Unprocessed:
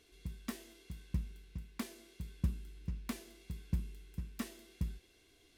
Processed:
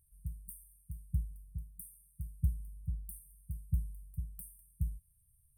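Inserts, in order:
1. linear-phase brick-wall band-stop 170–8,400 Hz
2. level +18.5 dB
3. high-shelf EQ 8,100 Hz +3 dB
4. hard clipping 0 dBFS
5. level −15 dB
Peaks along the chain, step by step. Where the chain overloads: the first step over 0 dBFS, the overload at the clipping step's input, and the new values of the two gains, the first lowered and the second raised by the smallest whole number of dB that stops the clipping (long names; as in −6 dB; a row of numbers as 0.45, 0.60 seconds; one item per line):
−23.0, −4.5, −4.5, −4.5, −19.5 dBFS
no step passes full scale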